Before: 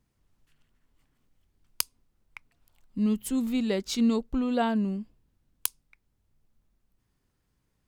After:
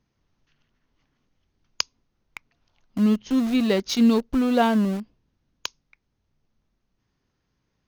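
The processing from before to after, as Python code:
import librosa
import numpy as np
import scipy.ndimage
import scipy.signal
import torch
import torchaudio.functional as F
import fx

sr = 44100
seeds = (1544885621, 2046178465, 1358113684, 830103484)

p1 = fx.brickwall_lowpass(x, sr, high_hz=6700.0)
p2 = np.where(np.abs(p1) >= 10.0 ** (-30.0 / 20.0), p1, 0.0)
p3 = p1 + F.gain(torch.from_numpy(p2), -5.0).numpy()
p4 = fx.low_shelf(p3, sr, hz=67.0, db=-8.5)
y = F.gain(torch.from_numpy(p4), 3.0).numpy()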